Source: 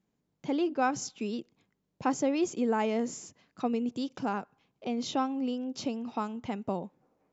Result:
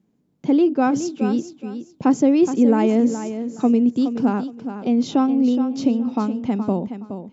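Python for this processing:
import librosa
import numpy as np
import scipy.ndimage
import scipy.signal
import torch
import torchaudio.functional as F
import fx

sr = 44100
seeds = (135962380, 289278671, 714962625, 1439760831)

p1 = fx.peak_eq(x, sr, hz=240.0, db=12.0, octaves=2.1)
p2 = p1 + fx.echo_feedback(p1, sr, ms=420, feedback_pct=23, wet_db=-10, dry=0)
y = p2 * 10.0 ** (3.0 / 20.0)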